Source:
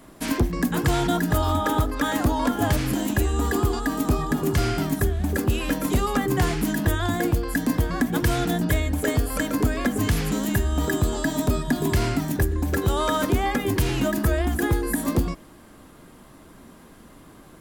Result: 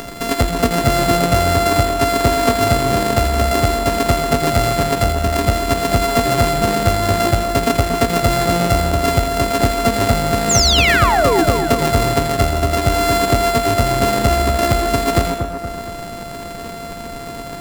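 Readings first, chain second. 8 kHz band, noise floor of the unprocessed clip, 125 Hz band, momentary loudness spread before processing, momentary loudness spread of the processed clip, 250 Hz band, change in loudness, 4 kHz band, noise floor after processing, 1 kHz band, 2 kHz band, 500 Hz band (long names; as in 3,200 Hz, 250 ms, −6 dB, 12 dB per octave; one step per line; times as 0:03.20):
+10.5 dB, −49 dBFS, +5.5 dB, 2 LU, 12 LU, +3.5 dB, +8.0 dB, +13.0 dB, −30 dBFS, +12.0 dB, +8.0 dB, +11.0 dB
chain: samples sorted by size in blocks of 64 samples
upward compression, threshold −25 dBFS
sound drawn into the spectrogram fall, 0:10.49–0:11.44, 300–7,700 Hz −21 dBFS
echo with a time of its own for lows and highs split 1,700 Hz, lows 235 ms, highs 83 ms, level −6.5 dB
level +5 dB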